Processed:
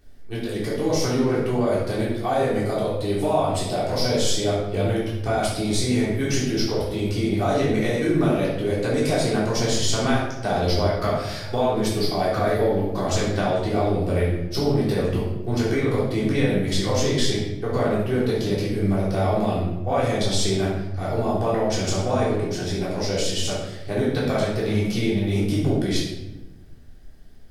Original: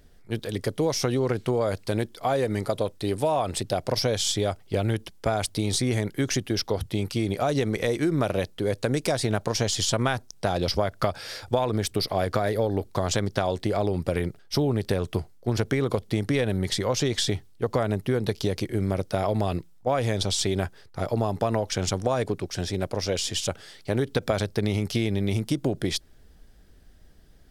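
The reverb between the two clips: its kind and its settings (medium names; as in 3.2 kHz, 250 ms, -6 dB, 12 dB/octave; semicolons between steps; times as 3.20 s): simulated room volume 400 m³, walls mixed, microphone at 3.5 m; trim -6.5 dB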